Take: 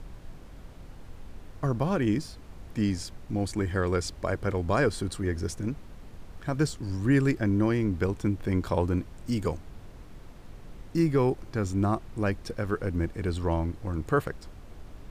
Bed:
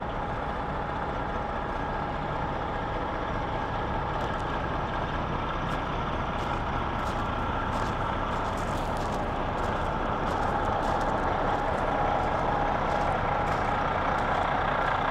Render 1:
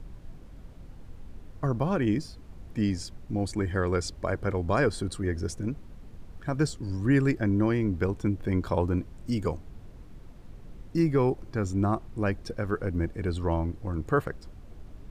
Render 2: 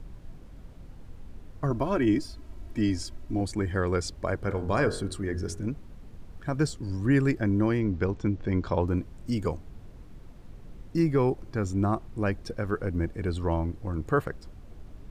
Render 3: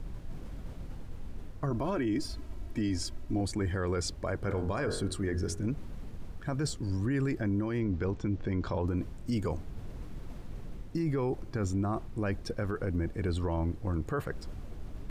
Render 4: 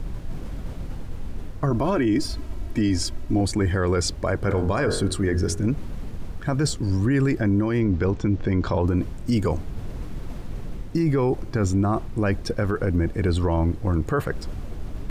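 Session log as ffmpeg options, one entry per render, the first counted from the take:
-af "afftdn=nr=6:nf=-47"
-filter_complex "[0:a]asettb=1/sr,asplit=3[s0][s1][s2];[s0]atrim=end=1.704[s3];[s1]atrim=start=1.7:end=3.41,asetpts=PTS-STARTPTS,afade=t=in:d=0.004:c=qsin,afade=t=out:st=1.706:d=0.004:c=qsin,aecho=1:1:3.1:0.65,atrim=end_sample=75411[s4];[s2]atrim=start=3.406[s5];[s3][s4]acrossfade=d=0.004:c1=hsin:c2=qsin[s6];[s6][s5]acrossfade=d=0.004:c1=qsin:c2=hsin,asettb=1/sr,asplit=3[s7][s8][s9];[s7]atrim=end=4.424[s10];[s8]atrim=start=4.42:end=5.66,asetpts=PTS-STARTPTS,afade=t=in:d=0.004:c=qsin,afade=t=out:st=1.236:d=0.004:c=qsin,bandreject=f=45.47:t=h:w=4,bandreject=f=90.94:t=h:w=4,bandreject=f=136.41:t=h:w=4,bandreject=f=181.88:t=h:w=4,bandreject=f=227.35:t=h:w=4,bandreject=f=272.82:t=h:w=4,bandreject=f=318.29:t=h:w=4,bandreject=f=363.76:t=h:w=4,bandreject=f=409.23:t=h:w=4,bandreject=f=454.7:t=h:w=4,bandreject=f=500.17:t=h:w=4,bandreject=f=545.64:t=h:w=4,bandreject=f=591.11:t=h:w=4,bandreject=f=636.58:t=h:w=4,bandreject=f=682.05:t=h:w=4,bandreject=f=727.52:t=h:w=4,bandreject=f=772.99:t=h:w=4,bandreject=f=818.46:t=h:w=4,bandreject=f=863.93:t=h:w=4,bandreject=f=909.4:t=h:w=4,bandreject=f=954.87:t=h:w=4,bandreject=f=1000.34:t=h:w=4,bandreject=f=1045.81:t=h:w=4,bandreject=f=1091.28:t=h:w=4,bandreject=f=1136.75:t=h:w=4,bandreject=f=1182.22:t=h:w=4,bandreject=f=1227.69:t=h:w=4,bandreject=f=1273.16:t=h:w=4,bandreject=f=1318.63:t=h:w=4,bandreject=f=1364.1:t=h:w=4,bandreject=f=1409.57:t=h:w=4,bandreject=f=1455.04:t=h:w=4,bandreject=f=1500.51:t=h:w=4,bandreject=f=1545.98:t=h:w=4,bandreject=f=1591.45:t=h:w=4,bandreject=f=1636.92:t=h:w=4,bandreject=f=1682.39:t=h:w=4,bandreject=f=1727.86:t=h:w=4[s11];[s9]atrim=start=5.656[s12];[s10][s11]acrossfade=d=0.004:c1=hsin:c2=qsin[s13];[s13][s12]acrossfade=d=0.004:c1=qsin:c2=hsin,asettb=1/sr,asplit=3[s14][s15][s16];[s14]atrim=end=7.804[s17];[s15]atrim=start=7.8:end=8.87,asetpts=PTS-STARTPTS,afade=t=in:d=0.004:c=qsin,afade=t=out:st=1.066:d=0.004:c=qsin,lowpass=f=6600:w=0.5412,lowpass=f=6600:w=1.3066[s18];[s16]atrim=start=8.866[s19];[s17][s18]acrossfade=d=0.004:c1=hsin:c2=qsin[s20];[s20][s19]acrossfade=d=0.004:c1=qsin:c2=hsin"
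-af "alimiter=limit=0.0668:level=0:latency=1:release=16,areverse,acompressor=mode=upward:threshold=0.0251:ratio=2.5,areverse"
-af "volume=2.99"

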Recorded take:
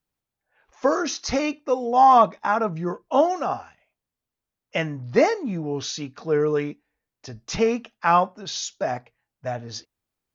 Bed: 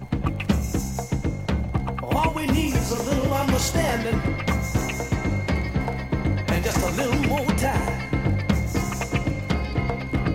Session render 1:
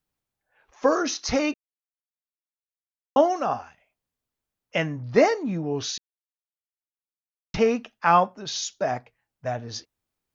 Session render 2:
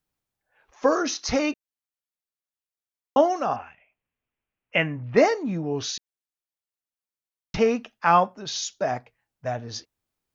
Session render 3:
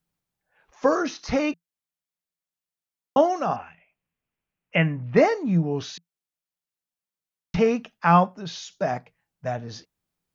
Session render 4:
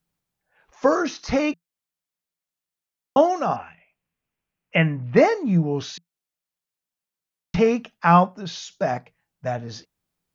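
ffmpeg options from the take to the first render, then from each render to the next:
-filter_complex "[0:a]asplit=5[s0][s1][s2][s3][s4];[s0]atrim=end=1.54,asetpts=PTS-STARTPTS,afade=t=out:st=1.536:d=0.004:c=hsin[s5];[s1]atrim=start=1.54:end=3.16,asetpts=PTS-STARTPTS,volume=0[s6];[s2]atrim=start=3.16:end=5.98,asetpts=PTS-STARTPTS,afade=t=in:d=0.004:c=hsin,afade=t=out:st=2.816:d=0.004:c=hsin[s7];[s3]atrim=start=5.98:end=7.54,asetpts=PTS-STARTPTS,volume=0[s8];[s4]atrim=start=7.54,asetpts=PTS-STARTPTS,afade=t=in:d=0.004:c=hsin[s9];[s5][s6][s7][s8][s9]concat=n=5:v=0:a=1"
-filter_complex "[0:a]asettb=1/sr,asplit=3[s0][s1][s2];[s0]atrim=end=3.564[s3];[s1]atrim=start=3.56:end=5.17,asetpts=PTS-STARTPTS,afade=t=in:d=0.004:c=qsin,afade=t=out:st=1.606:d=0.004:c=qsin,highshelf=f=3500:t=q:w=3:g=-10.5[s4];[s2]atrim=start=5.166[s5];[s3][s4]acrossfade=d=0.004:c1=hsin:c2=qsin[s6];[s6][s5]acrossfade=d=0.004:c1=qsin:c2=hsin"
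-filter_complex "[0:a]acrossover=split=3300[s0][s1];[s1]acompressor=threshold=0.00891:ratio=4:attack=1:release=60[s2];[s0][s2]amix=inputs=2:normalize=0,equalizer=f=170:w=4.9:g=12"
-af "volume=1.26"

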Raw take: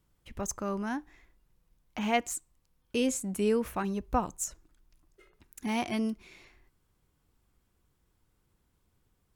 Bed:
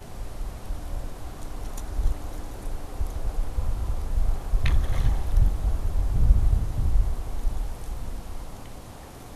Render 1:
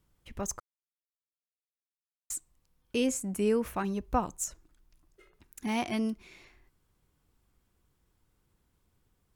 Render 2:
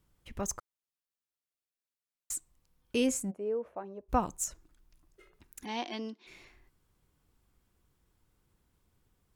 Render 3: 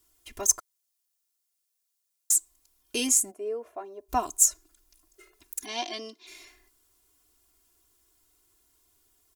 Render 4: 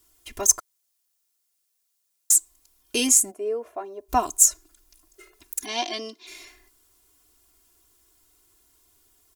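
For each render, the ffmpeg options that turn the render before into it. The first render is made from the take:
-filter_complex "[0:a]asettb=1/sr,asplit=3[s0][s1][s2];[s0]atrim=end=3.044[s3];[s1]atrim=start=3.04:end=3.64,asetpts=PTS-STARTPTS,afade=t=in:d=0.004:c=qsin,afade=t=out:st=0.596:d=0.004:c=qsin,equalizer=f=3700:w=3.1:g=-6.5[s4];[s2]atrim=start=3.636[s5];[s3][s4]acrossfade=d=0.004:c1=hsin:c2=qsin[s6];[s6][s5]acrossfade=d=0.004:c1=qsin:c2=hsin,asplit=3[s7][s8][s9];[s7]atrim=end=0.6,asetpts=PTS-STARTPTS,afade=t=out:st=0.596:d=0.004:c=hsin[s10];[s8]atrim=start=0.6:end=2.3,asetpts=PTS-STARTPTS,volume=0[s11];[s9]atrim=start=2.3,asetpts=PTS-STARTPTS,afade=t=in:d=0.004:c=hsin[s12];[s10][s11][s12]concat=n=3:v=0:a=1"
-filter_complex "[0:a]asplit=3[s0][s1][s2];[s0]afade=t=out:st=3.3:d=0.02[s3];[s1]bandpass=f=570:t=q:w=2.8,afade=t=in:st=3.3:d=0.02,afade=t=out:st=4.08:d=0.02[s4];[s2]afade=t=in:st=4.08:d=0.02[s5];[s3][s4][s5]amix=inputs=3:normalize=0,asplit=3[s6][s7][s8];[s6]afade=t=out:st=5.64:d=0.02[s9];[s7]highpass=f=290:w=0.5412,highpass=f=290:w=1.3066,equalizer=f=390:t=q:w=4:g=-5,equalizer=f=640:t=q:w=4:g=-6,equalizer=f=1300:t=q:w=4:g=-9,equalizer=f=2300:t=q:w=4:g=-7,equalizer=f=3800:t=q:w=4:g=4,lowpass=f=5300:w=0.5412,lowpass=f=5300:w=1.3066,afade=t=in:st=5.64:d=0.02,afade=t=out:st=6.26:d=0.02[s10];[s8]afade=t=in:st=6.26:d=0.02[s11];[s9][s10][s11]amix=inputs=3:normalize=0"
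-af "bass=f=250:g=-10,treble=f=4000:g=13,aecho=1:1:2.9:0.92"
-af "volume=1.78,alimiter=limit=0.794:level=0:latency=1"

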